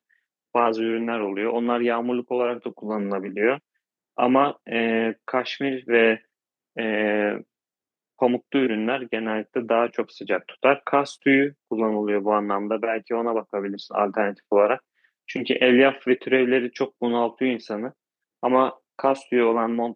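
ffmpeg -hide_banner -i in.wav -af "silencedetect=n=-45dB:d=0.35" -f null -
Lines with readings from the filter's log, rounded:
silence_start: 0.00
silence_end: 0.54 | silence_duration: 0.54
silence_start: 3.58
silence_end: 4.17 | silence_duration: 0.58
silence_start: 6.20
silence_end: 6.76 | silence_duration: 0.57
silence_start: 7.42
silence_end: 8.19 | silence_duration: 0.77
silence_start: 14.79
silence_end: 15.28 | silence_duration: 0.49
silence_start: 17.91
silence_end: 18.43 | silence_duration: 0.52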